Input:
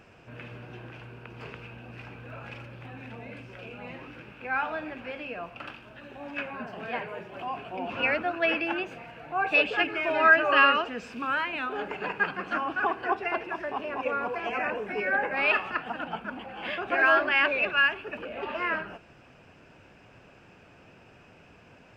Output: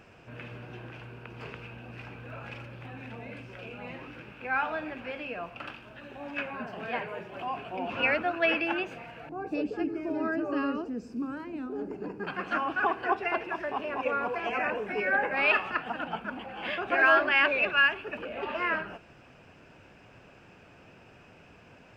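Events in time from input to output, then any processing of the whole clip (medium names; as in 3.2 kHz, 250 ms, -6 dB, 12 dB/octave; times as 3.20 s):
9.29–12.27 s: FFT filter 160 Hz 0 dB, 300 Hz +7 dB, 600 Hz -9 dB, 1.6 kHz -18 dB, 3.4 kHz -24 dB, 4.9 kHz -8 dB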